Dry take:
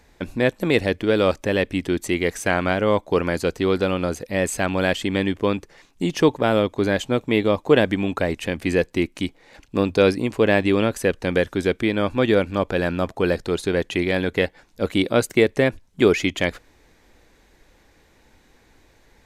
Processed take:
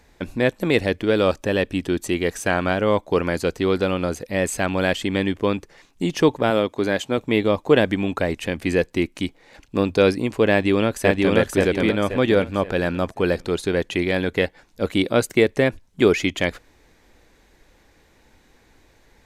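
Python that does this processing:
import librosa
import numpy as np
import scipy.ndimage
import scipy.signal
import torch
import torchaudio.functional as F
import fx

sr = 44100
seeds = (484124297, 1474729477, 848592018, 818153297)

y = fx.notch(x, sr, hz=2100.0, q=9.3, at=(1.21, 2.82))
y = fx.highpass(y, sr, hz=180.0, slope=6, at=(6.5, 7.18))
y = fx.echo_throw(y, sr, start_s=10.51, length_s=0.86, ms=530, feedback_pct=35, wet_db=-1.0)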